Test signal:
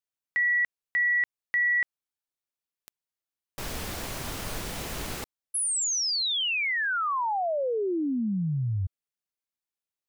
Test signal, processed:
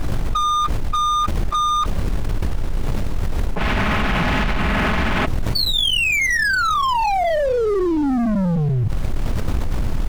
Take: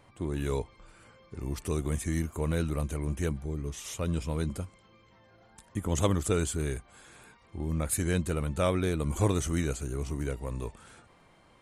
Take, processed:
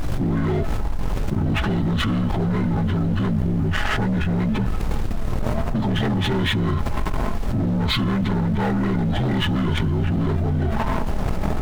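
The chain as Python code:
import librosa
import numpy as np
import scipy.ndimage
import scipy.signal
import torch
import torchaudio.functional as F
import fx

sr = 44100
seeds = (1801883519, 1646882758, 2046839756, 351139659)

y = fx.partial_stretch(x, sr, pct=77)
y = fx.recorder_agc(y, sr, target_db=-19.5, rise_db_per_s=7.4, max_gain_db=30)
y = fx.env_lowpass(y, sr, base_hz=570.0, full_db=-21.0)
y = scipy.signal.sosfilt(scipy.signal.butter(4, 2800.0, 'lowpass', fs=sr, output='sos'), y)
y = fx.peak_eq(y, sr, hz=460.0, db=-10.0, octaves=0.47)
y = y + 0.47 * np.pad(y, (int(4.7 * sr / 1000.0), 0))[:len(y)]
y = fx.leveller(y, sr, passes=2)
y = 10.0 ** (-24.0 / 20.0) * np.tanh(y / 10.0 ** (-24.0 / 20.0))
y = fx.dmg_noise_colour(y, sr, seeds[0], colour='brown', level_db=-44.0)
y = fx.power_curve(y, sr, exponent=1.4)
y = fx.low_shelf(y, sr, hz=97.0, db=6.0)
y = fx.env_flatten(y, sr, amount_pct=100)
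y = y * librosa.db_to_amplitude(5.0)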